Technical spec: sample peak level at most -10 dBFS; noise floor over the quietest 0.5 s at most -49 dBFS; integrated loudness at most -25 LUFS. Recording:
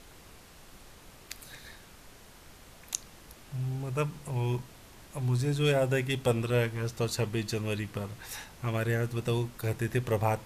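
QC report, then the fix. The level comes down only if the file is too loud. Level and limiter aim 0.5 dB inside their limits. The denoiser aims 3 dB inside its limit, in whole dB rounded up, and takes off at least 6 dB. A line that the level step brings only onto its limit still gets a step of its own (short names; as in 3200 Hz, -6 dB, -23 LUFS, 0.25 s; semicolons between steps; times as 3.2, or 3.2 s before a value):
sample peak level -8.0 dBFS: fail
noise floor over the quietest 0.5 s -52 dBFS: OK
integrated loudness -31.5 LUFS: OK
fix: limiter -10.5 dBFS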